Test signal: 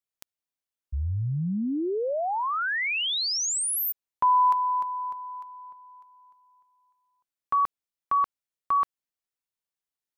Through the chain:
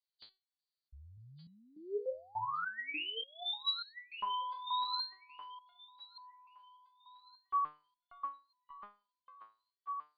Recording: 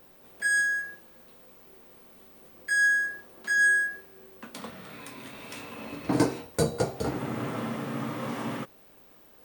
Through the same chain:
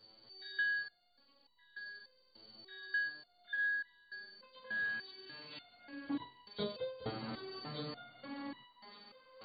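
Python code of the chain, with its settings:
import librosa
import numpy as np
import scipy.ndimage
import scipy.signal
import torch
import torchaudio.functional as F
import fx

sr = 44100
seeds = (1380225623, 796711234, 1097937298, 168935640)

y = fx.freq_compress(x, sr, knee_hz=2900.0, ratio=4.0)
y = fx.echo_thinned(y, sr, ms=1167, feedback_pct=23, hz=750.0, wet_db=-7)
y = fx.resonator_held(y, sr, hz=3.4, low_hz=110.0, high_hz=970.0)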